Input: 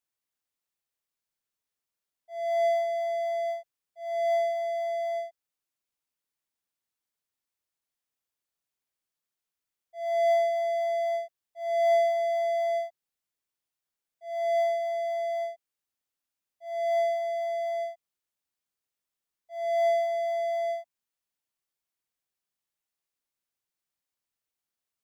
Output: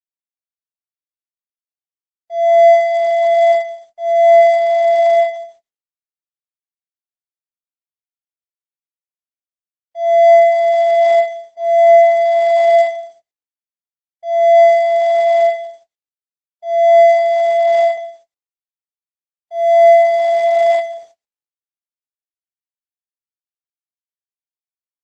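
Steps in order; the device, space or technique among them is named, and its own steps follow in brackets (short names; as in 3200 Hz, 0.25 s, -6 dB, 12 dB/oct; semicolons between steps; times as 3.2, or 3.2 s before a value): 2.73–4.36 bell 550 Hz -11 dB -> -1.5 dB 0.3 oct; speakerphone in a meeting room (reverb RT60 0.70 s, pre-delay 7 ms, DRR -2 dB; speakerphone echo 0.11 s, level -16 dB; AGC gain up to 15 dB; gate -40 dBFS, range -45 dB; gain -1 dB; Opus 12 kbps 48000 Hz)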